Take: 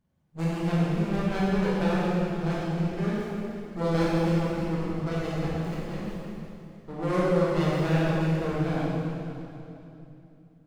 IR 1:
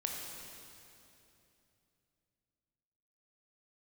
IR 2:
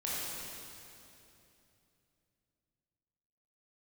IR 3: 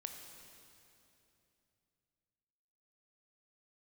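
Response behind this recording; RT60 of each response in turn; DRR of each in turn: 2; 2.9 s, 2.9 s, 2.9 s; -0.5 dB, -8.0 dB, 4.0 dB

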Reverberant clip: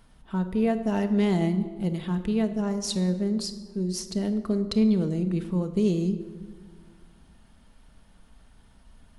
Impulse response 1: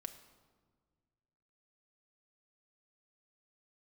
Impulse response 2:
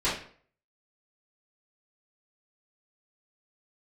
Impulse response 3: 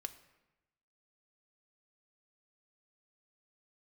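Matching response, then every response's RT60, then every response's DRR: 1; 1.6 s, 0.50 s, 1.0 s; 7.0 dB, -12.0 dB, 8.0 dB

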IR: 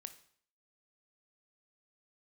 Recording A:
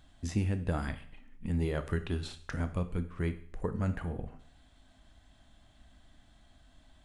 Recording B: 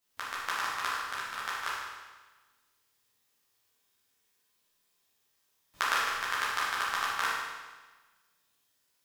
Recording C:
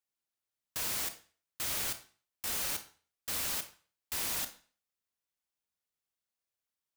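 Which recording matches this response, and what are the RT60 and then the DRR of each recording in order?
A; 0.55 s, 1.3 s, 0.40 s; 9.5 dB, -9.0 dB, 8.5 dB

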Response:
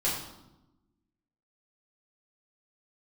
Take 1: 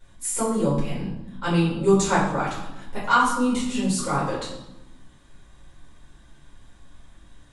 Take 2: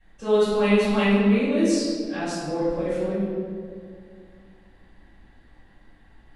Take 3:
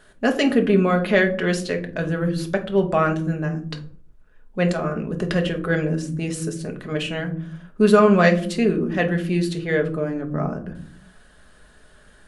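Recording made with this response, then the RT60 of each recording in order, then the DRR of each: 1; 0.95 s, 2.1 s, no single decay rate; -8.0 dB, -17.0 dB, 3.0 dB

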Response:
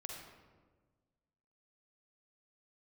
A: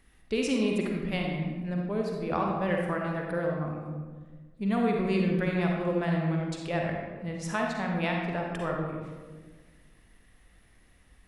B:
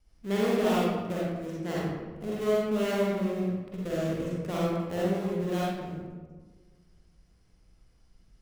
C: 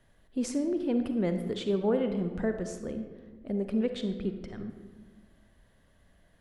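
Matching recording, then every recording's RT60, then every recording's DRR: A; 1.4 s, 1.4 s, 1.4 s; -0.5 dB, -7.0 dB, 6.5 dB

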